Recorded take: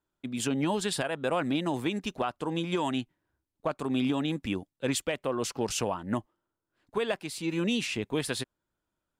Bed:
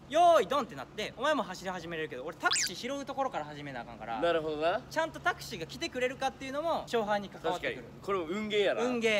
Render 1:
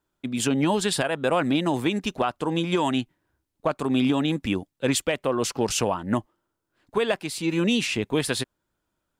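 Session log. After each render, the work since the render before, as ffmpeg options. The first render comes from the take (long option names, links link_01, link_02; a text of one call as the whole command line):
ffmpeg -i in.wav -af "volume=6dB" out.wav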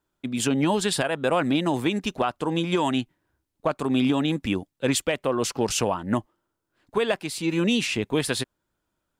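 ffmpeg -i in.wav -af anull out.wav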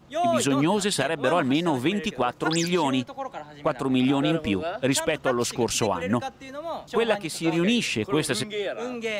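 ffmpeg -i in.wav -i bed.wav -filter_complex "[1:a]volume=-1dB[link_01];[0:a][link_01]amix=inputs=2:normalize=0" out.wav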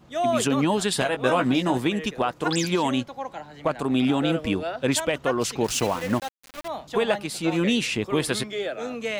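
ffmpeg -i in.wav -filter_complex "[0:a]asettb=1/sr,asplit=3[link_01][link_02][link_03];[link_01]atrim=end=1.004[link_04];[link_02]atrim=start=1:end=1.78,asetpts=PTS-STARTPTS,afade=type=in:duration=0.004:curve=qsin,afade=type=out:start_time=0.776:duration=0.004:curve=qsin,asplit=2[link_05][link_06];[link_06]adelay=16,volume=-6dB[link_07];[link_05][link_07]amix=inputs=2:normalize=0,atrim=end_sample=34398[link_08];[link_03]atrim=start=1.776[link_09];[link_04][link_08]acrossfade=duration=0.004:curve1=hsin:curve2=qsin[link_10];[link_10][link_09]acrossfade=duration=0.004:curve1=qsin:curve2=hsin,asettb=1/sr,asplit=3[link_11][link_12][link_13];[link_11]atrim=end=5.644[link_14];[link_12]atrim=start=5.64:end=6.68,asetpts=PTS-STARTPTS,afade=type=in:duration=0.004:curve=qsin,afade=type=out:start_time=1.036:duration=0.004:curve=qsin,aeval=exprs='val(0)*gte(abs(val(0)),0.0251)':channel_layout=same[link_15];[link_13]atrim=start=6.676[link_16];[link_14][link_15]acrossfade=duration=0.004:curve1=hsin:curve2=qsin[link_17];[link_17][link_16]acrossfade=duration=0.004:curve1=qsin:curve2=hsin" out.wav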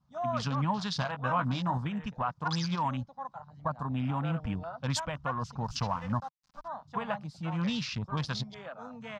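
ffmpeg -i in.wav -af "afwtdn=0.0224,firequalizer=gain_entry='entry(150,0);entry(360,-25);entry(550,-14);entry(1000,-1);entry(2000,-13);entry(2800,-12);entry(5100,-1);entry(9900,-21)':delay=0.05:min_phase=1" out.wav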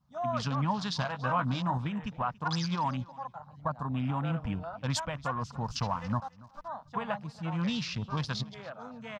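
ffmpeg -i in.wav -af "aecho=1:1:283|566:0.0841|0.0168" out.wav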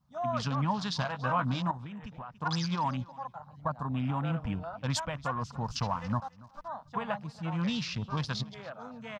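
ffmpeg -i in.wav -filter_complex "[0:a]asettb=1/sr,asplit=3[link_01][link_02][link_03];[link_01]atrim=end=1.714[link_04];[link_02]atrim=start=1.71:end=2.42,asetpts=PTS-STARTPTS,afade=type=in:duration=0.004:curve=qsin,afade=type=out:start_time=0.706:duration=0.004:curve=qsin,acompressor=threshold=-39dB:ratio=6:attack=3.2:release=140:knee=1:detection=peak[link_05];[link_03]atrim=start=2.416[link_06];[link_04][link_05]acrossfade=duration=0.004:curve1=hsin:curve2=qsin[link_07];[link_07][link_06]acrossfade=duration=0.004:curve1=qsin:curve2=hsin" out.wav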